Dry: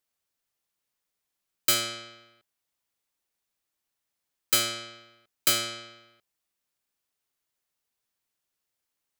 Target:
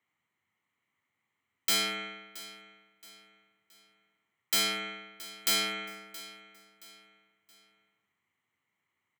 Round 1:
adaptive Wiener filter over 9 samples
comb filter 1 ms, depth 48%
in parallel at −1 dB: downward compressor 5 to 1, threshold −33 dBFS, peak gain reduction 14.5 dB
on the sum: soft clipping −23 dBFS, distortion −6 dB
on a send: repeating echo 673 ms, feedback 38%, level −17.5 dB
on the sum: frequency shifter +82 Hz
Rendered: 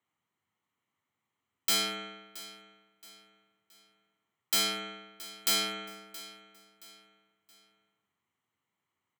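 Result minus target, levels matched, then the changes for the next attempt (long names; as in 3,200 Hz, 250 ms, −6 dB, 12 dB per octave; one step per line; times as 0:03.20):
2,000 Hz band −3.5 dB
add after downward compressor: parametric band 2,000 Hz +13 dB 0.77 octaves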